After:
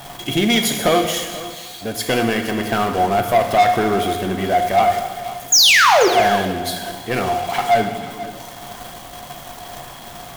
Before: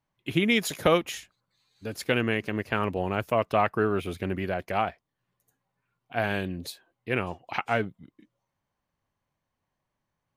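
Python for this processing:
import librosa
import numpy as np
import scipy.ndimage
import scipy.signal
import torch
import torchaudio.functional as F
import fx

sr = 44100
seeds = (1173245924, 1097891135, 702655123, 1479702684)

y = x + 0.5 * 10.0 ** (-34.0 / 20.0) * np.sign(x)
y = fx.peak_eq(y, sr, hz=76.0, db=-3.0, octaves=1.3)
y = fx.notch(y, sr, hz=2500.0, q=9.0)
y = fx.small_body(y, sr, hz=(710.0, 3300.0), ring_ms=95, db=17)
y = fx.spec_paint(y, sr, seeds[0], shape='fall', start_s=5.52, length_s=0.56, low_hz=340.0, high_hz=7100.0, level_db=-15.0)
y = fx.leveller(y, sr, passes=3)
y = fx.high_shelf(y, sr, hz=6700.0, db=4.5)
y = y + 10.0 ** (-16.0 / 20.0) * np.pad(y, (int(484 * sr / 1000.0), 0))[:len(y)]
y = fx.rev_gated(y, sr, seeds[1], gate_ms=470, shape='falling', drr_db=4.5)
y = y * 10.0 ** (-5.5 / 20.0)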